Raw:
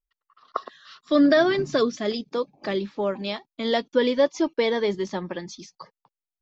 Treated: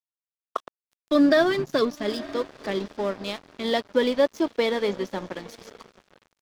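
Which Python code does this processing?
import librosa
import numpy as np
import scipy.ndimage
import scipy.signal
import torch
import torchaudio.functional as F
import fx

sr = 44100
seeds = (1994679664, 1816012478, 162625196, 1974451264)

y = fx.echo_diffused(x, sr, ms=901, feedback_pct=44, wet_db=-15.5)
y = np.sign(y) * np.maximum(np.abs(y) - 10.0 ** (-37.0 / 20.0), 0.0)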